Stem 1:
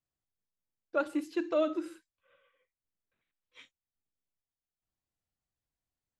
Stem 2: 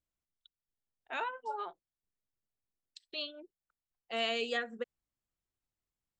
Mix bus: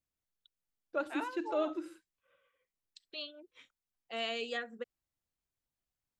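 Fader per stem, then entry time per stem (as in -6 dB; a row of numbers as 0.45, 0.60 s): -4.5, -3.5 dB; 0.00, 0.00 s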